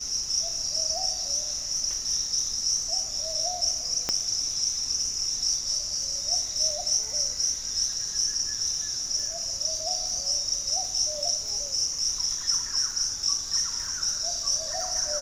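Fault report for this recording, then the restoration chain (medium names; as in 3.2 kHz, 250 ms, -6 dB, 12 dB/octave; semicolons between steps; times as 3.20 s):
crackle 25 per s -34 dBFS
4.09 s: pop -11 dBFS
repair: de-click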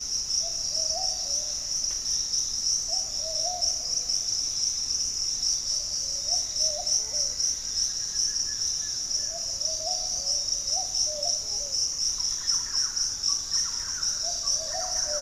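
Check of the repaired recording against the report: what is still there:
4.09 s: pop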